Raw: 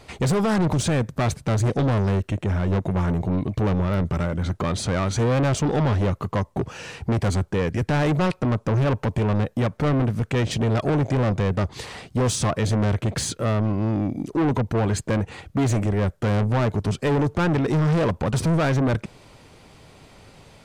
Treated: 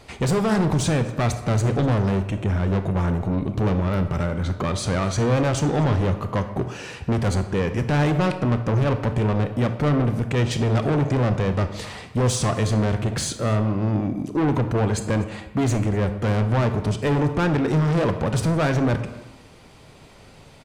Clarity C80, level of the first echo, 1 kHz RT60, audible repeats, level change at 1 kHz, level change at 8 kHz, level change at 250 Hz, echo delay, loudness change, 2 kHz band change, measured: 12.0 dB, -22.5 dB, 1.0 s, 1, +0.5 dB, +0.5 dB, +0.5 dB, 245 ms, +0.5 dB, +0.5 dB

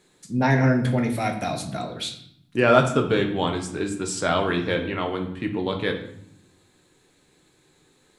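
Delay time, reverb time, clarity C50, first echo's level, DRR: no echo, 0.70 s, 8.5 dB, no echo, 3.0 dB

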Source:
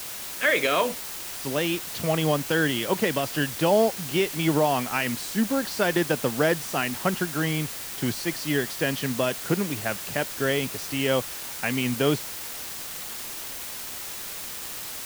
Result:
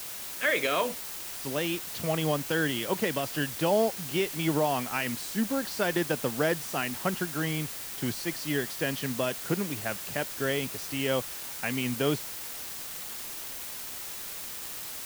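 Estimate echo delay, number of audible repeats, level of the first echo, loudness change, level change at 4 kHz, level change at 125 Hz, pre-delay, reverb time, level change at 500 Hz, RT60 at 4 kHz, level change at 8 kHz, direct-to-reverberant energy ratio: no echo, no echo, no echo, -4.0 dB, -4.5 dB, -4.5 dB, no reverb, no reverb, -4.5 dB, no reverb, -3.5 dB, no reverb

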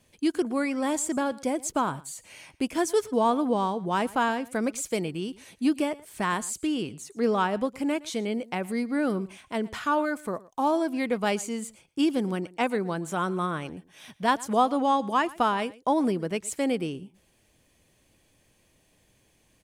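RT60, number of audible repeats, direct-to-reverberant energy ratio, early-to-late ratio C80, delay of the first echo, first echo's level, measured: no reverb, 1, no reverb, no reverb, 116 ms, -21.0 dB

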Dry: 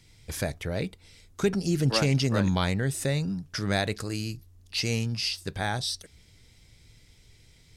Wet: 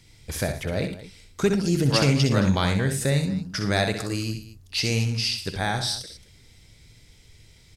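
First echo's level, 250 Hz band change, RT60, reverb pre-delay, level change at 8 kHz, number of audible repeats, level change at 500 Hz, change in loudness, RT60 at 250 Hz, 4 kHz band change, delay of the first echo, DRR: -7.5 dB, +4.0 dB, no reverb, no reverb, +4.0 dB, 3, +4.0 dB, +4.0 dB, no reverb, +4.0 dB, 63 ms, no reverb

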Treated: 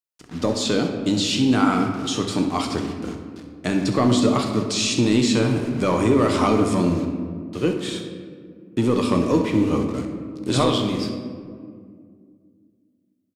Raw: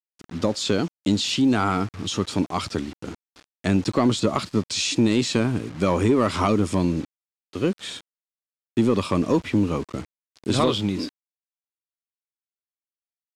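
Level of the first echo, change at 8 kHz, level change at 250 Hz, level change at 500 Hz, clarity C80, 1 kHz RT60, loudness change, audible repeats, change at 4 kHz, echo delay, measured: -13.5 dB, +2.5 dB, +2.5 dB, +2.5 dB, 7.0 dB, 1.9 s, +1.5 dB, 1, +1.5 dB, 65 ms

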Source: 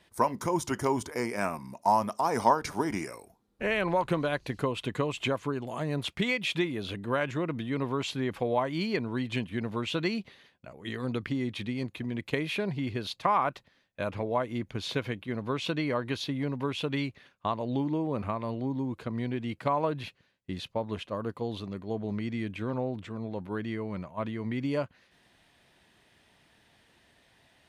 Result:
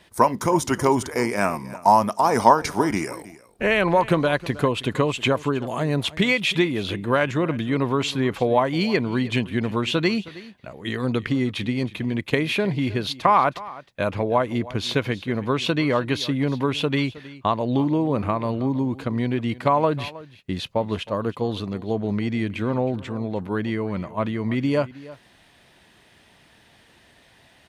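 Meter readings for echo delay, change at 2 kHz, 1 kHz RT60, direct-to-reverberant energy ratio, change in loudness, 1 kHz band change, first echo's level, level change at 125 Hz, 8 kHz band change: 316 ms, +8.5 dB, no reverb, no reverb, +8.5 dB, +8.5 dB, -18.5 dB, +8.5 dB, +8.5 dB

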